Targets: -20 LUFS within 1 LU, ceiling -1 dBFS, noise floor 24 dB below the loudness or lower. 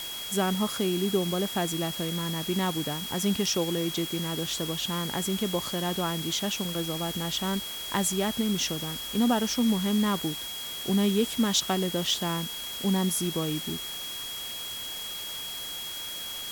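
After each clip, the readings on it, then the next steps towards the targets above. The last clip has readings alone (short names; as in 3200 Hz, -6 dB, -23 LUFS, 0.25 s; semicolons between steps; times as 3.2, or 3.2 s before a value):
steady tone 3300 Hz; tone level -36 dBFS; noise floor -37 dBFS; noise floor target -53 dBFS; loudness -28.5 LUFS; peak -11.5 dBFS; loudness target -20.0 LUFS
-> notch 3300 Hz, Q 30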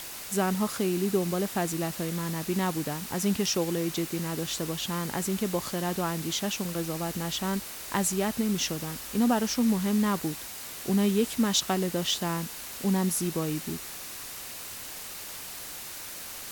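steady tone none; noise floor -40 dBFS; noise floor target -53 dBFS
-> noise print and reduce 13 dB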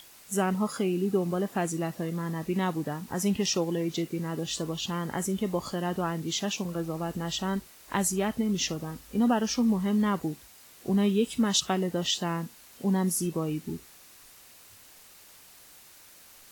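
noise floor -53 dBFS; loudness -29.0 LUFS; peak -11.0 dBFS; loudness target -20.0 LUFS
-> gain +9 dB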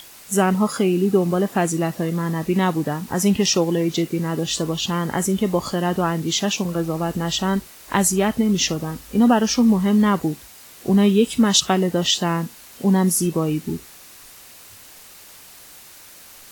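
loudness -20.0 LUFS; peak -2.0 dBFS; noise floor -44 dBFS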